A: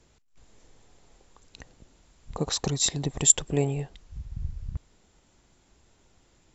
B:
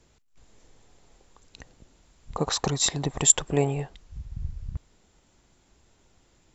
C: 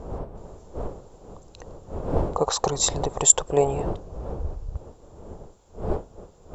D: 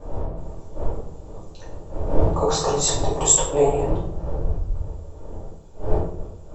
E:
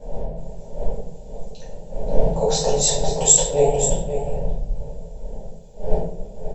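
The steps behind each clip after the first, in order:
dynamic equaliser 1,100 Hz, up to +8 dB, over −47 dBFS, Q 0.7
wind on the microphone 250 Hz −34 dBFS; octave-band graphic EQ 125/250/500/1,000/2,000/4,000 Hz −6/−10/+6/+4/−10/−3 dB; level +3.5 dB
pitch vibrato 11 Hz 54 cents; rectangular room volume 130 cubic metres, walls mixed, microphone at 2.4 metres; level −7 dB
phaser with its sweep stopped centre 320 Hz, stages 6; single-tap delay 533 ms −10 dB; level +3 dB

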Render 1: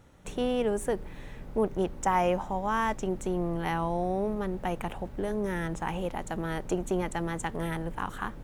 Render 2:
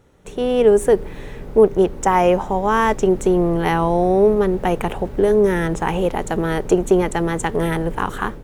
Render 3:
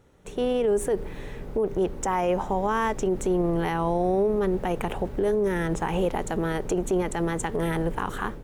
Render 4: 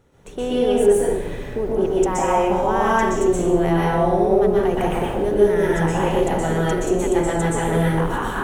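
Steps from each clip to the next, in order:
parametric band 420 Hz +8.5 dB 0.43 octaves; automatic gain control gain up to 10 dB; level +1 dB
brickwall limiter −12.5 dBFS, peak gain reduction 11 dB; level −4 dB
dense smooth reverb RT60 0.94 s, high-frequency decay 0.8×, pre-delay 110 ms, DRR −5.5 dB

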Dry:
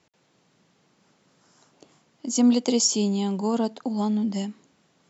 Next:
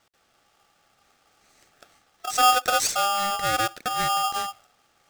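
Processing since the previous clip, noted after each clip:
dynamic equaliser 4,300 Hz, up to −5 dB, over −43 dBFS, Q 0.86
ring modulator with a square carrier 1,000 Hz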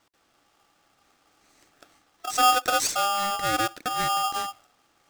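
hollow resonant body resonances 300/1,000 Hz, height 8 dB
level −1.5 dB

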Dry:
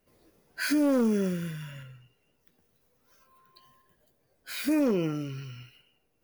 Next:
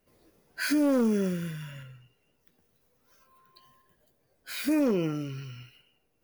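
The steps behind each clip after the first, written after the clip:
no processing that can be heard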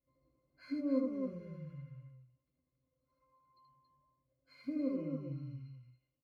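resonances in every octave C, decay 0.12 s
loudspeakers that aren't time-aligned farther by 27 metres −3 dB, 95 metres −5 dB
level −5.5 dB

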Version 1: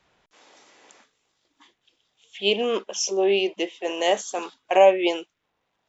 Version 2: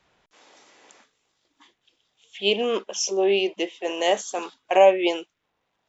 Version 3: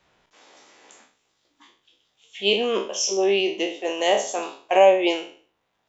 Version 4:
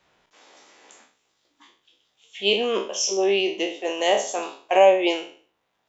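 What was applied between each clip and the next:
no processing that can be heard
peak hold with a decay on every bin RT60 0.45 s
low-shelf EQ 140 Hz −5 dB

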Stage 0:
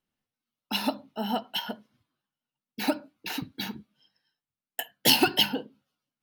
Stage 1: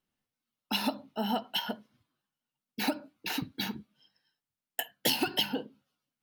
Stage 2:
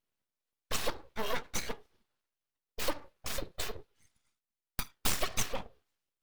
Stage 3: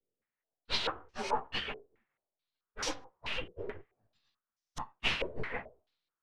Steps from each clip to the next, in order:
downward compressor 6 to 1, threshold −25 dBFS, peak gain reduction 10 dB
full-wave rectification
partials spread apart or drawn together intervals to 90%; low-pass on a step sequencer 4.6 Hz 460–5,700 Hz

